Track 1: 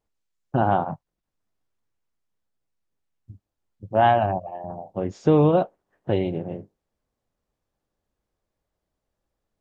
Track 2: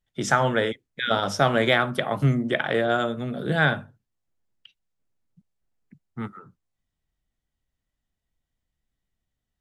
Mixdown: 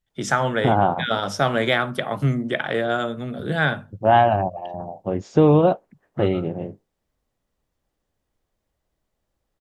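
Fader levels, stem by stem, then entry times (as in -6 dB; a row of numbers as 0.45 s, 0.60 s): +2.5 dB, 0.0 dB; 0.10 s, 0.00 s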